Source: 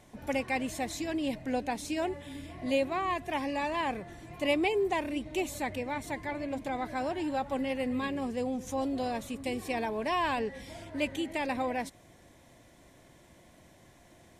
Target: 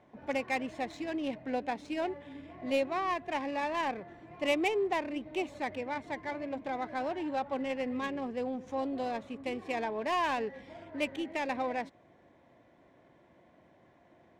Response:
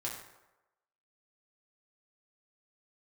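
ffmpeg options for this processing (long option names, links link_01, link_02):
-af "highpass=frequency=280:poles=1,adynamicsmooth=sensitivity=5.5:basefreq=1900"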